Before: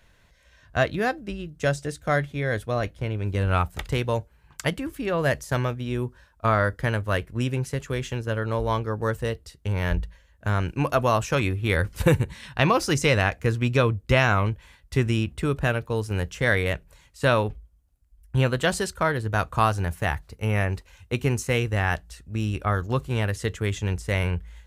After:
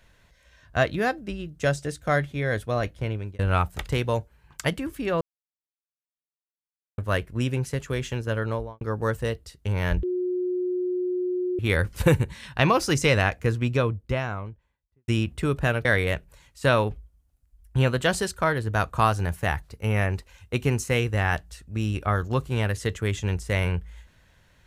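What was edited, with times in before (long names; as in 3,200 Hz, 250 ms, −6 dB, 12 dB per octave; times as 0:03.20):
0:03.11–0:03.39: fade out
0:05.21–0:06.98: silence
0:08.44–0:08.81: fade out and dull
0:10.03–0:11.59: beep over 362 Hz −23.5 dBFS
0:13.20–0:15.08: fade out and dull
0:15.85–0:16.44: remove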